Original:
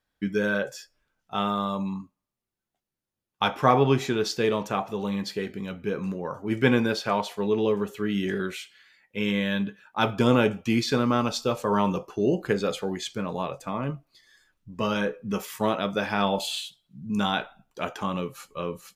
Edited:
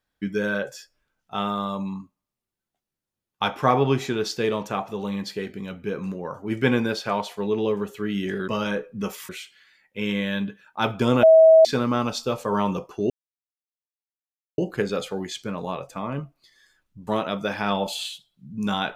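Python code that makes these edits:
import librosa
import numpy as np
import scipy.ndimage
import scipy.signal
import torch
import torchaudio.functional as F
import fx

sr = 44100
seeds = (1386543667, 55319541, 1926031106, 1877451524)

y = fx.edit(x, sr, fx.bleep(start_s=10.42, length_s=0.42, hz=644.0, db=-8.5),
    fx.insert_silence(at_s=12.29, length_s=1.48),
    fx.move(start_s=14.78, length_s=0.81, to_s=8.48), tone=tone)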